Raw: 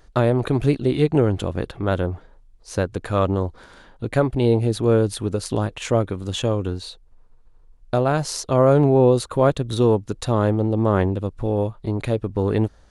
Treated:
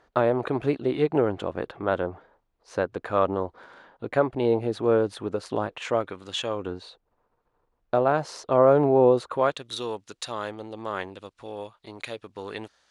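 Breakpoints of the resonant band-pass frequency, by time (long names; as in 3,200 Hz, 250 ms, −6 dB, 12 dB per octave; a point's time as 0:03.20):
resonant band-pass, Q 0.59
0:05.63 930 Hz
0:06.41 2,400 Hz
0:06.71 830 Hz
0:09.24 830 Hz
0:09.65 3,700 Hz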